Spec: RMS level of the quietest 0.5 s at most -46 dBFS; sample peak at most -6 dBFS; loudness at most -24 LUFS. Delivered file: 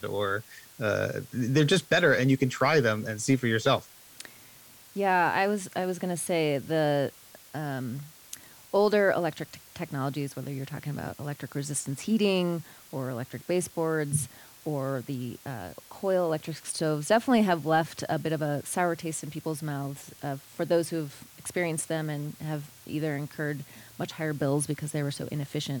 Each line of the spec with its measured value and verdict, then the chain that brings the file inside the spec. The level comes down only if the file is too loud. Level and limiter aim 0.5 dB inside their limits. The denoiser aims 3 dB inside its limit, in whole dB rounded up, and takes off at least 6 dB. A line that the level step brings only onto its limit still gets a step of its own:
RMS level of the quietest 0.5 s -53 dBFS: OK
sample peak -12.0 dBFS: OK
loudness -29.0 LUFS: OK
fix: none

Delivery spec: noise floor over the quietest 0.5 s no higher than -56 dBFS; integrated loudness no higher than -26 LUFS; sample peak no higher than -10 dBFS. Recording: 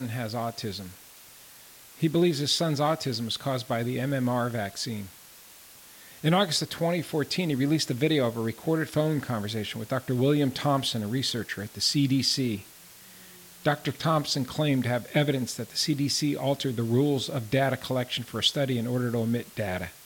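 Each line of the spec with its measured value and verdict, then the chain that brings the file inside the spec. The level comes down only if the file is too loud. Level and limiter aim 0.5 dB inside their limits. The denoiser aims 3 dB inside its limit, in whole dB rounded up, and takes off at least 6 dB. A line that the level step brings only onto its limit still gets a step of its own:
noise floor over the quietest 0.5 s -50 dBFS: fail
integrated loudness -27.0 LUFS: OK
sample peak -9.0 dBFS: fail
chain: denoiser 9 dB, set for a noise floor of -50 dBFS; limiter -10.5 dBFS

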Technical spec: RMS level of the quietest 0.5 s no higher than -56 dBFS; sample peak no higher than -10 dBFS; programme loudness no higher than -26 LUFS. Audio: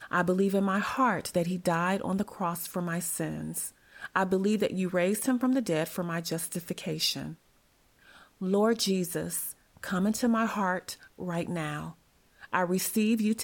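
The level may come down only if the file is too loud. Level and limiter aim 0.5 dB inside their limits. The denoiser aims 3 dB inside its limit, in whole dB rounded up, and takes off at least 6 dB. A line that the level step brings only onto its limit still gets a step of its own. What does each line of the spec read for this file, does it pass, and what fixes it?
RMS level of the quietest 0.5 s -65 dBFS: OK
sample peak -11.5 dBFS: OK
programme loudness -29.5 LUFS: OK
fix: none

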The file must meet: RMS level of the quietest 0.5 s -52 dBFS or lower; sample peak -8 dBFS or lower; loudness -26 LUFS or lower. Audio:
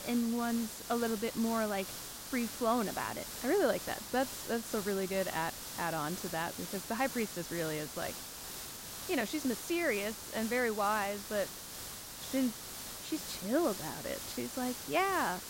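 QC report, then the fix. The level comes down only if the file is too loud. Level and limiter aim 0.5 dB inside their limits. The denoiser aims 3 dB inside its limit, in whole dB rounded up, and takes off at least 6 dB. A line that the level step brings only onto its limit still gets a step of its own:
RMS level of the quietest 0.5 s -45 dBFS: fail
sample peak -17.5 dBFS: OK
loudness -35.0 LUFS: OK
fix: denoiser 10 dB, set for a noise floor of -45 dBFS

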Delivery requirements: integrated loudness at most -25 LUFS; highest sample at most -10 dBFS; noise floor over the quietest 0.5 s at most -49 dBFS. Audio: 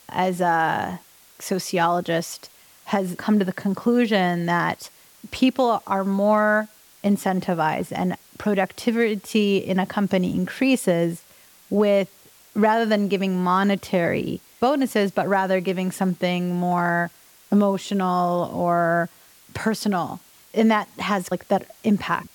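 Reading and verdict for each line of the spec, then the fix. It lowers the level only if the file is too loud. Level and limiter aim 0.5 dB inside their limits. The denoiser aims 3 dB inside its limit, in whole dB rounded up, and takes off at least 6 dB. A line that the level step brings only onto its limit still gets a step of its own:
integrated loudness -22.5 LUFS: fail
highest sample -8.5 dBFS: fail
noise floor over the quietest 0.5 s -52 dBFS: OK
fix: gain -3 dB

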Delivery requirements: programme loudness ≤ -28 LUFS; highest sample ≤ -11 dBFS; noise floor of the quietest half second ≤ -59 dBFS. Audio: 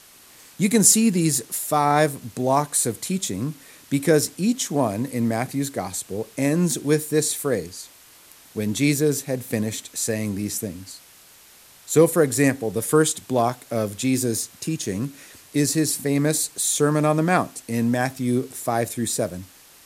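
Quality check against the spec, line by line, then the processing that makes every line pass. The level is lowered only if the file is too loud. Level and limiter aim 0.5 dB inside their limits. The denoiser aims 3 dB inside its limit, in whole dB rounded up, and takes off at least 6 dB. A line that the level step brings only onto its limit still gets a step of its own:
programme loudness -22.0 LUFS: fail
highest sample -3.0 dBFS: fail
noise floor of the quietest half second -50 dBFS: fail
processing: denoiser 6 dB, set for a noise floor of -50 dBFS; gain -6.5 dB; limiter -11.5 dBFS

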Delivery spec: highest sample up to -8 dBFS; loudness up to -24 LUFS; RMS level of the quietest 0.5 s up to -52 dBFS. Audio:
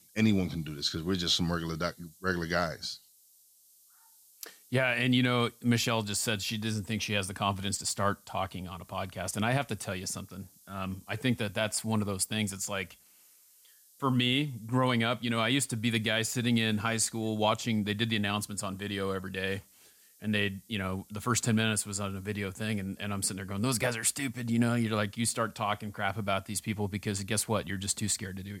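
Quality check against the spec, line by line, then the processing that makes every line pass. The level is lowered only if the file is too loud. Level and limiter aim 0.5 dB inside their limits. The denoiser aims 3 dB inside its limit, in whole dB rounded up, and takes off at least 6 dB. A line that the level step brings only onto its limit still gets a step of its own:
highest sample -14.0 dBFS: OK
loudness -31.0 LUFS: OK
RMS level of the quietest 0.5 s -62 dBFS: OK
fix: none

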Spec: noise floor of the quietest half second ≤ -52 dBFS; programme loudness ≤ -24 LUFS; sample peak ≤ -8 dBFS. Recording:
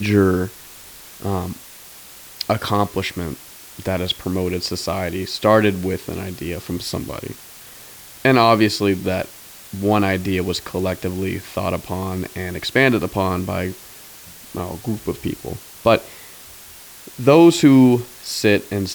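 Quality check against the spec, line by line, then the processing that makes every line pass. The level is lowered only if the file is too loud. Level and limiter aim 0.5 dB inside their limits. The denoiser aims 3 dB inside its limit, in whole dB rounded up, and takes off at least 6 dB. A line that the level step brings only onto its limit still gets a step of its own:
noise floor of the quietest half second -41 dBFS: fail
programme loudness -19.5 LUFS: fail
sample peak -2.0 dBFS: fail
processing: denoiser 9 dB, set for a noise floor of -41 dBFS; gain -5 dB; limiter -8.5 dBFS

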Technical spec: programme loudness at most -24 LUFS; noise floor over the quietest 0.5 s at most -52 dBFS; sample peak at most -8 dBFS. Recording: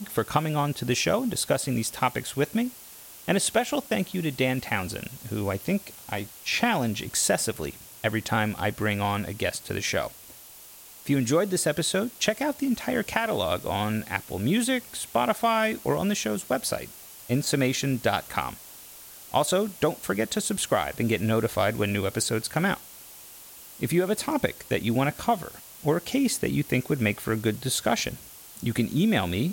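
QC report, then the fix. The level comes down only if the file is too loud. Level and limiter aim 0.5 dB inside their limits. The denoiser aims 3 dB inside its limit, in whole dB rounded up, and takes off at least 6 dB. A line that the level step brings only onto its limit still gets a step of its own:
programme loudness -26.5 LUFS: OK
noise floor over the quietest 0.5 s -47 dBFS: fail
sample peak -8.5 dBFS: OK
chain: denoiser 8 dB, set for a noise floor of -47 dBFS

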